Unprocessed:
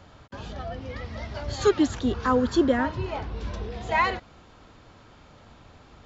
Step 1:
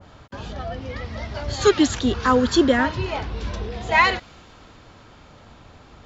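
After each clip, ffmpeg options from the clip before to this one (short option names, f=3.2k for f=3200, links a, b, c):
-af "adynamicequalizer=threshold=0.0126:dfrequency=1600:dqfactor=0.7:tfrequency=1600:tqfactor=0.7:attack=5:release=100:ratio=0.375:range=3.5:mode=boostabove:tftype=highshelf,volume=4dB"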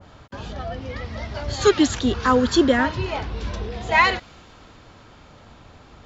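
-af anull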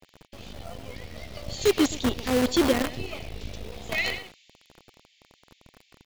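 -filter_complex "[0:a]asuperstop=centerf=1200:order=8:qfactor=0.93,asplit=2[a][b];[b]adelay=120,highpass=300,lowpass=3.4k,asoftclip=type=hard:threshold=-14dB,volume=-9dB[c];[a][c]amix=inputs=2:normalize=0,acrossover=split=1700[d][e];[d]acrusher=bits=4:dc=4:mix=0:aa=0.000001[f];[f][e]amix=inputs=2:normalize=0,volume=-5dB"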